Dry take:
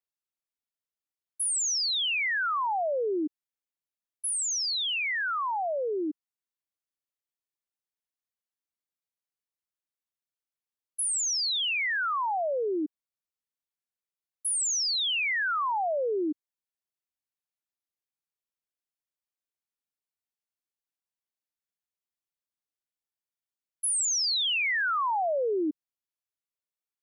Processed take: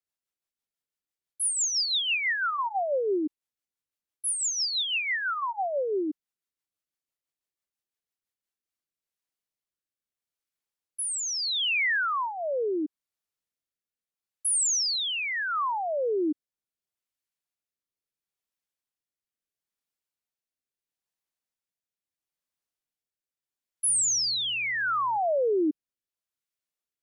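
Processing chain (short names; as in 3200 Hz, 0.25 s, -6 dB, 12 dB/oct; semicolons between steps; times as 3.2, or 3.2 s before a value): 23.87–25.17 buzz 120 Hz, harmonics 14, -58 dBFS -9 dB/oct; rotary speaker horn 6 Hz, later 0.75 Hz, at 8.23; gain +3.5 dB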